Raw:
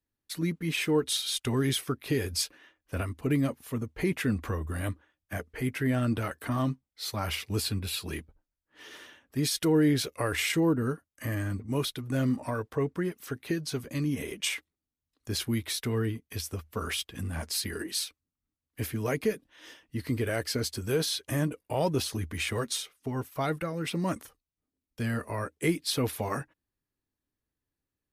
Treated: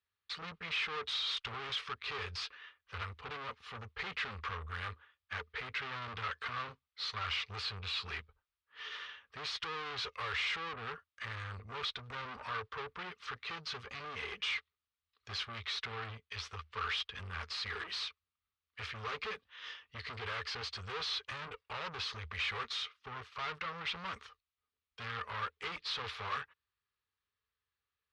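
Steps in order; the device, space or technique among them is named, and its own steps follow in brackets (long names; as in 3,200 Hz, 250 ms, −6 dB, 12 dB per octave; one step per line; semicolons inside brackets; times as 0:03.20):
scooped metal amplifier (tube saturation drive 40 dB, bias 0.7; loudspeaker in its box 86–4,000 Hz, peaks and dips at 140 Hz −9 dB, 430 Hz +10 dB, 650 Hz −6 dB, 1,200 Hz +9 dB; guitar amp tone stack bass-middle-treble 10-0-10)
level +11.5 dB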